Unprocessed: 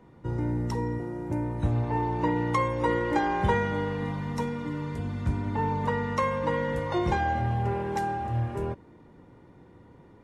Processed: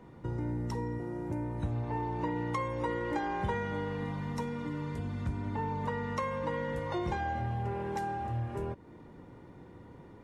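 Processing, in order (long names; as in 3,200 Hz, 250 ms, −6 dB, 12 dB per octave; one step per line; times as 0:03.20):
downward compressor 2 to 1, threshold −39 dBFS, peak gain reduction 11 dB
level +1.5 dB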